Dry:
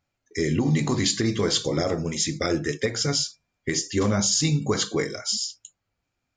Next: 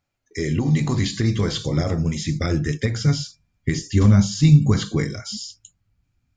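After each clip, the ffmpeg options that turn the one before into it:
-filter_complex "[0:a]acrossover=split=4000[s0][s1];[s1]acompressor=threshold=0.0224:ratio=4:attack=1:release=60[s2];[s0][s2]amix=inputs=2:normalize=0,asubboost=boost=7.5:cutoff=180"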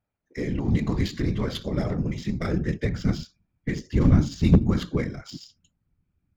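-af "afftfilt=real='hypot(re,im)*cos(2*PI*random(0))':imag='hypot(re,im)*sin(2*PI*random(1))':win_size=512:overlap=0.75,aeval=exprs='0.376*(abs(mod(val(0)/0.376+3,4)-2)-1)':c=same,adynamicsmooth=sensitivity=4.5:basefreq=2500,volume=1.26"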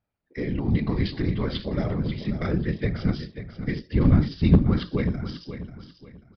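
-filter_complex "[0:a]asplit=2[s0][s1];[s1]aecho=0:1:539|1078|1617:0.282|0.0817|0.0237[s2];[s0][s2]amix=inputs=2:normalize=0,aresample=11025,aresample=44100"

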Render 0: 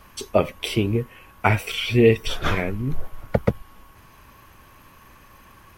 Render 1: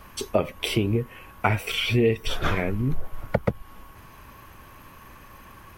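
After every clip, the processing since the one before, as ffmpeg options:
-af "equalizer=f=5600:w=0.55:g=-3,acompressor=threshold=0.0631:ratio=2.5,volume=1.41"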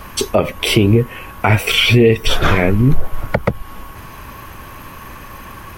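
-af "alimiter=level_in=5.01:limit=0.891:release=50:level=0:latency=1,volume=0.891"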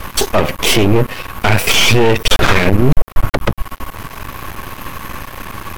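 -af "apsyclip=3.76,aeval=exprs='max(val(0),0)':c=same,volume=0.841"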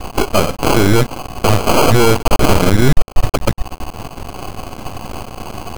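-af "acrusher=samples=24:mix=1:aa=0.000001"

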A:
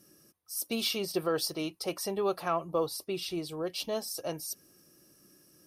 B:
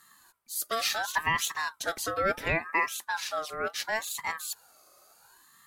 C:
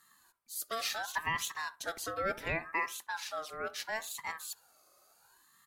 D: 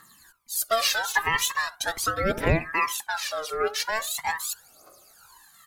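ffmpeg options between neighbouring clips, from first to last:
-af "bandreject=f=50:t=h:w=6,bandreject=f=100:t=h:w=6,bandreject=f=150:t=h:w=6,bandreject=f=200:t=h:w=6,aeval=exprs='val(0)*sin(2*PI*1200*n/s+1200*0.25/0.71*sin(2*PI*0.71*n/s))':c=same,volume=1.78"
-filter_complex "[0:a]asplit=2[s0][s1];[s1]adelay=65,lowpass=f=1400:p=1,volume=0.15,asplit=2[s2][s3];[s3]adelay=65,lowpass=f=1400:p=1,volume=0.27,asplit=2[s4][s5];[s5]adelay=65,lowpass=f=1400:p=1,volume=0.27[s6];[s0][s2][s4][s6]amix=inputs=4:normalize=0,volume=0.473"
-af "aphaser=in_gain=1:out_gain=1:delay=2.5:decay=0.7:speed=0.41:type=triangular,volume=2.82"

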